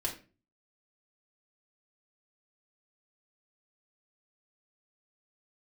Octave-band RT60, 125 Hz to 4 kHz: 0.60, 0.50, 0.40, 0.30, 0.35, 0.25 s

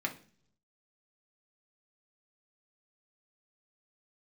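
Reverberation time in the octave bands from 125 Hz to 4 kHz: 1.0, 0.80, 0.55, 0.40, 0.45, 0.55 s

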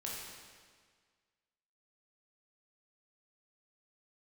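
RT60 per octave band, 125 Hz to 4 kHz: 1.7, 1.7, 1.7, 1.7, 1.7, 1.5 s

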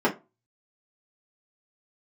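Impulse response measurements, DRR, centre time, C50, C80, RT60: -7.5 dB, 14 ms, 15.0 dB, 23.0 dB, 0.25 s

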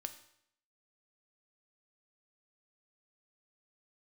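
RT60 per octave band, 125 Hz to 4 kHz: 0.70, 0.70, 0.70, 0.70, 0.70, 0.65 s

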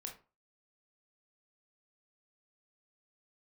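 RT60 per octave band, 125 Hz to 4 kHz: 0.35, 0.35, 0.35, 0.35, 0.25, 0.20 s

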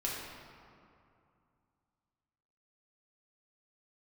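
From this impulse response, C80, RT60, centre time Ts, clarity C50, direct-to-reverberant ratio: 1.5 dB, 2.5 s, 0.108 s, -0.5 dB, -5.0 dB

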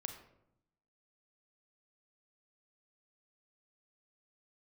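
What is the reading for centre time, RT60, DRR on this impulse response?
18 ms, 0.80 s, 5.5 dB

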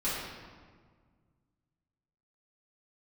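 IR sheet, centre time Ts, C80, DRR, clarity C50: 98 ms, 1.0 dB, -11.5 dB, -1.5 dB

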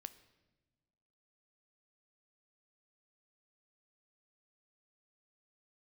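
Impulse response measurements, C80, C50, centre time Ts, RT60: 17.5 dB, 15.5 dB, 5 ms, not exponential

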